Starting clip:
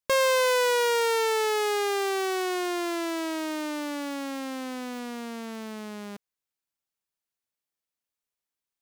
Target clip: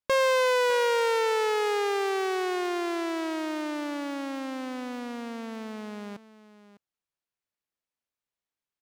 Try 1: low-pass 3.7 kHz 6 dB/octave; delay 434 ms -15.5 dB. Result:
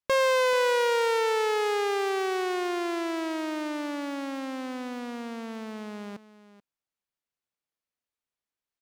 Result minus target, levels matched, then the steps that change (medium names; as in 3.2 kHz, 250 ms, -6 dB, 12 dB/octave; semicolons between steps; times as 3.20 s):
echo 170 ms early
change: delay 604 ms -15.5 dB